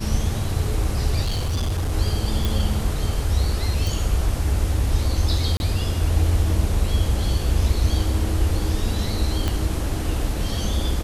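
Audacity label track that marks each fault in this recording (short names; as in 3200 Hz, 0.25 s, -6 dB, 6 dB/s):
1.230000	1.930000	clipped -19.5 dBFS
2.450000	2.450000	pop
3.870000	3.870000	pop
5.570000	5.600000	gap 31 ms
9.480000	9.480000	pop -9 dBFS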